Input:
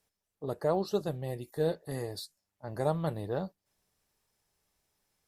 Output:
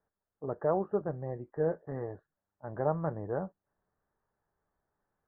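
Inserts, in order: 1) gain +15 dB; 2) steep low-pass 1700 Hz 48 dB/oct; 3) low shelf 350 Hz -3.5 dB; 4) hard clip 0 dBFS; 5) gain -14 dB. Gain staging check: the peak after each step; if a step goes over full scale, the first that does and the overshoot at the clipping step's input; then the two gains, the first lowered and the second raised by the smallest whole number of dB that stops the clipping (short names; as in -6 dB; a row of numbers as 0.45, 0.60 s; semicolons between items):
-0.5, -0.5, -1.5, -1.5, -15.5 dBFS; no overload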